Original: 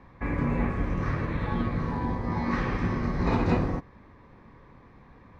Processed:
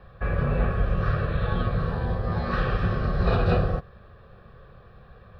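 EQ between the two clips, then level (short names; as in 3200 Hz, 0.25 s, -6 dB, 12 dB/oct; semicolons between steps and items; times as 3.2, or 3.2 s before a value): fixed phaser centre 1400 Hz, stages 8; +6.5 dB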